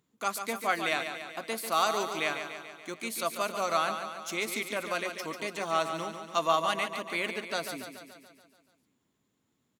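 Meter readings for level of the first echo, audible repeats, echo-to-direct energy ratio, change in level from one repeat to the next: -8.0 dB, 7, -6.0 dB, -4.5 dB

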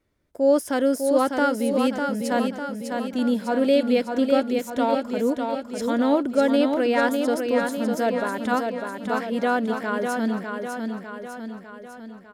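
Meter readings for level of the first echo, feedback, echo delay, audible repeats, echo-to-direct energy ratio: -5.0 dB, 55%, 601 ms, 6, -3.5 dB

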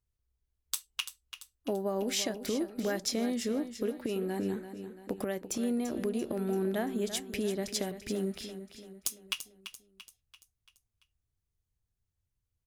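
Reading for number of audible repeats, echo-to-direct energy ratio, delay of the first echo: 4, -10.0 dB, 339 ms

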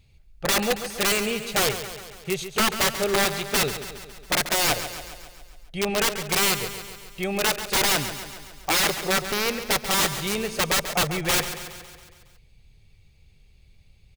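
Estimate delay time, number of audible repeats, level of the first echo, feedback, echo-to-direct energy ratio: 138 ms, 6, -11.0 dB, 59%, -9.0 dB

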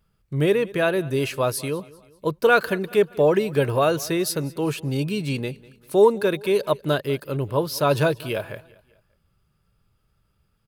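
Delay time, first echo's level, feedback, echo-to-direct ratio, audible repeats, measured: 196 ms, -21.5 dB, 46%, -20.5 dB, 3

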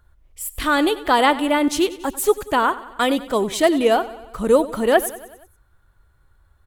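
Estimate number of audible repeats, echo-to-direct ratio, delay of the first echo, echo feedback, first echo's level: 4, -15.5 dB, 94 ms, 58%, -17.0 dB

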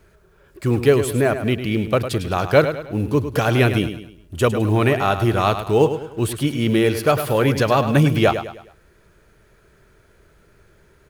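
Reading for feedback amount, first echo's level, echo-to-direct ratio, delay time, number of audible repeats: 40%, -10.0 dB, -9.5 dB, 104 ms, 4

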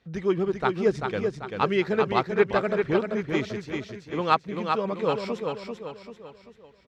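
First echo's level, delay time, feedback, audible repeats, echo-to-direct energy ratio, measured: -5.0 dB, 390 ms, 44%, 5, -4.0 dB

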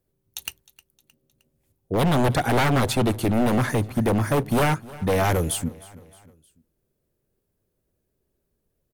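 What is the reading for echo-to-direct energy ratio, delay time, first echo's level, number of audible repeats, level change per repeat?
-19.5 dB, 310 ms, -20.5 dB, 3, -6.5 dB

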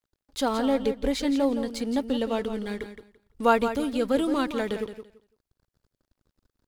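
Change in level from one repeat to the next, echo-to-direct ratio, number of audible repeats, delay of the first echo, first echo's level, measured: -14.5 dB, -10.0 dB, 2, 169 ms, -10.0 dB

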